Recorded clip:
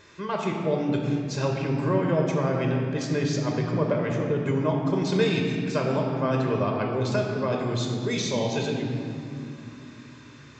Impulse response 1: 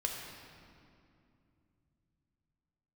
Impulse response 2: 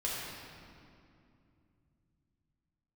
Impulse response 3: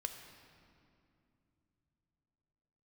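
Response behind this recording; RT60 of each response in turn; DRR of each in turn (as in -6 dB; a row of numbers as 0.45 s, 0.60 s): 1; 2.6 s, 2.6 s, 2.8 s; 0.0 dB, -6.0 dB, 5.5 dB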